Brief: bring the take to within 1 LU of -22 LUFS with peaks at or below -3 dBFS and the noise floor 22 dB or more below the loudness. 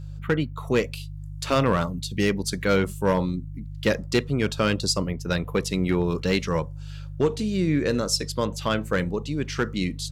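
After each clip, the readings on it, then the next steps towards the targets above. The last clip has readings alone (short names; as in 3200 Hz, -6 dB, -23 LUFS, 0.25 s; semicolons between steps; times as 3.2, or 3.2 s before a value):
clipped 0.3%; flat tops at -13.5 dBFS; hum 50 Hz; harmonics up to 150 Hz; hum level -33 dBFS; loudness -25.0 LUFS; peak -13.5 dBFS; loudness target -22.0 LUFS
-> clip repair -13.5 dBFS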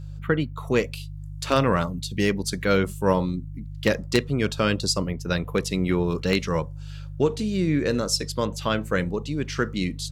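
clipped 0.0%; hum 50 Hz; harmonics up to 150 Hz; hum level -33 dBFS
-> de-hum 50 Hz, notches 3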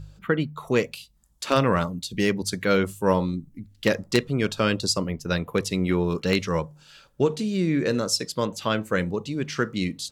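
hum none; loudness -25.0 LUFS; peak -4.5 dBFS; loudness target -22.0 LUFS
-> gain +3 dB; limiter -3 dBFS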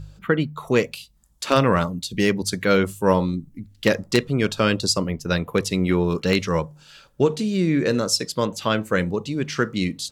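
loudness -22.0 LUFS; peak -3.0 dBFS; noise floor -55 dBFS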